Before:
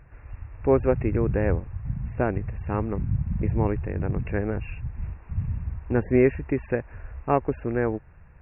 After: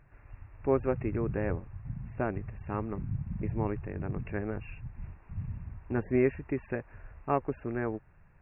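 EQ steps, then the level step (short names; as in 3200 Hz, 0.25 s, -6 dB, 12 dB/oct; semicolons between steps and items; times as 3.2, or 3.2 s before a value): bell 61 Hz -9 dB 0.77 oct; notch 490 Hz, Q 12; dynamic EQ 1200 Hz, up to +3 dB, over -51 dBFS, Q 5.1; -6.5 dB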